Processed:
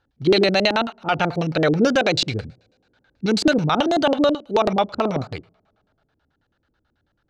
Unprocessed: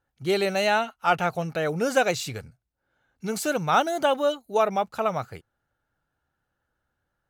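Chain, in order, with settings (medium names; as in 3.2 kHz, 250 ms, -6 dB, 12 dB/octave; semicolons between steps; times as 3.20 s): two-slope reverb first 0.4 s, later 2.3 s, from -27 dB, DRR 16.5 dB; LFO low-pass square 9.2 Hz 310–4200 Hz; peak limiter -16 dBFS, peak gain reduction 9.5 dB; trim +8 dB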